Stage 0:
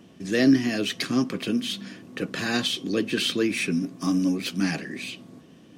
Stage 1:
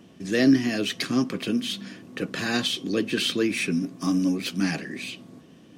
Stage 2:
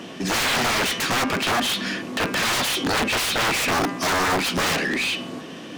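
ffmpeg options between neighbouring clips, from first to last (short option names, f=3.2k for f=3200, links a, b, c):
-af anull
-filter_complex "[0:a]aeval=exprs='(mod(15.8*val(0)+1,2)-1)/15.8':c=same,bandreject=f=199.6:t=h:w=4,bandreject=f=399.2:t=h:w=4,bandreject=f=598.8:t=h:w=4,bandreject=f=798.4:t=h:w=4,bandreject=f=998:t=h:w=4,bandreject=f=1.1976k:t=h:w=4,bandreject=f=1.3972k:t=h:w=4,bandreject=f=1.5968k:t=h:w=4,bandreject=f=1.7964k:t=h:w=4,bandreject=f=1.996k:t=h:w=4,bandreject=f=2.1956k:t=h:w=4,bandreject=f=2.3952k:t=h:w=4,bandreject=f=2.5948k:t=h:w=4,bandreject=f=2.7944k:t=h:w=4,bandreject=f=2.994k:t=h:w=4,asplit=2[a][b];[b]highpass=f=720:p=1,volume=21dB,asoftclip=type=tanh:threshold=-22.5dB[c];[a][c]amix=inputs=2:normalize=0,lowpass=f=4.1k:p=1,volume=-6dB,volume=6.5dB"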